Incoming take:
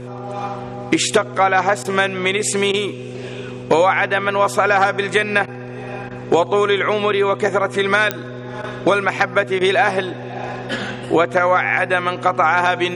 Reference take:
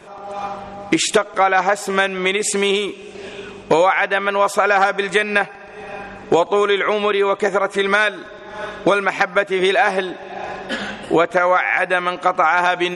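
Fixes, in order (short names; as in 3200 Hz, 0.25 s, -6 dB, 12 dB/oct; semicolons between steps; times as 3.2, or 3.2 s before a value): de-click; de-hum 123.9 Hz, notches 4; interpolate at 1.83/2.72/5.46/6.09/8.62/9.59, 17 ms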